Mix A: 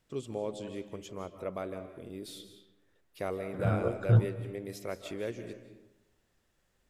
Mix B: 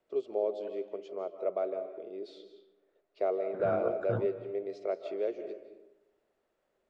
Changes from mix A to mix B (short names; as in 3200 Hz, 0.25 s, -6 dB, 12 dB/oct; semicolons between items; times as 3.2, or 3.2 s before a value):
first voice: add speaker cabinet 240–6000 Hz, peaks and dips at 250 Hz -7 dB, 400 Hz +8 dB, 640 Hz +10 dB, 1000 Hz -6 dB, 1700 Hz -9 dB, 4400 Hz +7 dB; master: add three-band isolator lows -17 dB, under 240 Hz, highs -14 dB, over 2200 Hz